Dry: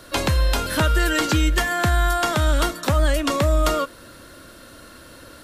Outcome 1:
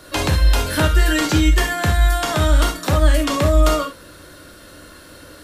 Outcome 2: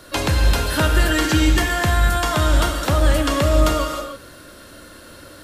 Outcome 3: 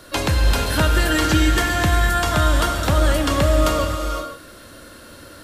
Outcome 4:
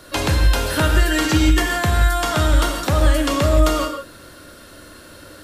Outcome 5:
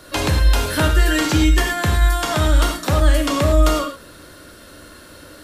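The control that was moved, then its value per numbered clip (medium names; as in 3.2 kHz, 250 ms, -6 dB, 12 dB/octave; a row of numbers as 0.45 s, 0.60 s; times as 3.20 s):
gated-style reverb, gate: 90 ms, 340 ms, 540 ms, 200 ms, 130 ms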